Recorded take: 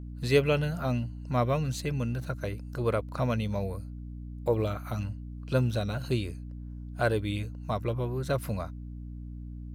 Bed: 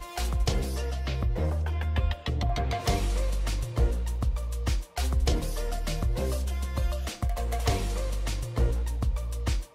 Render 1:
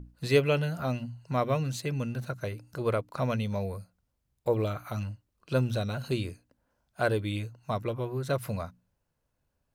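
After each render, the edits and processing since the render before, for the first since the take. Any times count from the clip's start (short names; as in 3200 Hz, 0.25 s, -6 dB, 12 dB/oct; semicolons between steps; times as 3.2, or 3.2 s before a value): notches 60/120/180/240/300 Hz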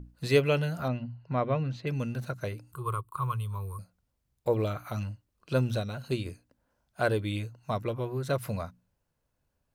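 0.88–1.87 air absorption 270 m; 2.72–3.79 EQ curve 130 Hz 0 dB, 260 Hz -26 dB, 380 Hz -6 dB, 660 Hz -25 dB, 1100 Hz +9 dB, 1800 Hz -19 dB, 3200 Hz -6 dB, 5800 Hz -24 dB, 8300 Hz +6 dB; 5.8–6.26 upward expander, over -37 dBFS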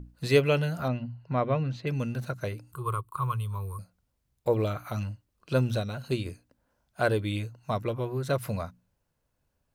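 gain +1.5 dB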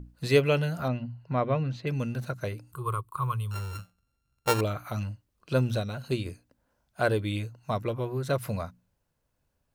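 3.51–4.61 sample sorter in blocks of 32 samples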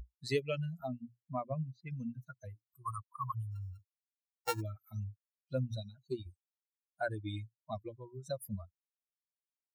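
per-bin expansion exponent 3; compressor 2:1, threshold -36 dBFS, peak gain reduction 10.5 dB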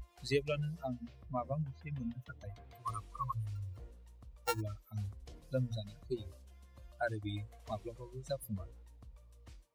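add bed -27.5 dB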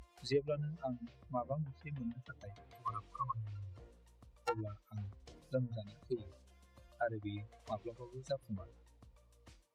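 treble ducked by the level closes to 1100 Hz, closed at -32 dBFS; HPF 140 Hz 6 dB/oct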